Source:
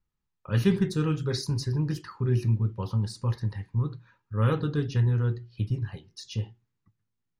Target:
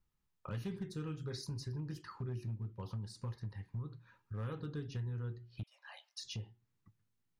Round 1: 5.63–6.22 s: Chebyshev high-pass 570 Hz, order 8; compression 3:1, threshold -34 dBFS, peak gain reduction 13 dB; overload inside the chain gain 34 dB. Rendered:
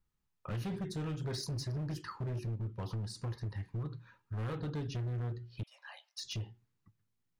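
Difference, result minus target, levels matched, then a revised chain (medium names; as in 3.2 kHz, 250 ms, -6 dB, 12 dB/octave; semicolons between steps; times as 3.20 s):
compression: peak gain reduction -6.5 dB
5.63–6.22 s: Chebyshev high-pass 570 Hz, order 8; compression 3:1, threshold -44 dBFS, peak gain reduction 19.5 dB; overload inside the chain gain 34 dB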